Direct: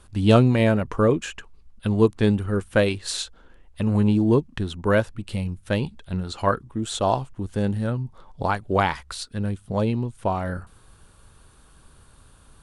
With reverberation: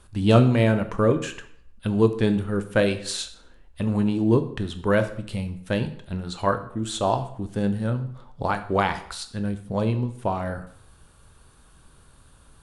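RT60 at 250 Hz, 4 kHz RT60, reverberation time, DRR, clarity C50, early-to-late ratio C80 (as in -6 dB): 0.60 s, 0.55 s, 0.65 s, 9.0 dB, 12.5 dB, 15.5 dB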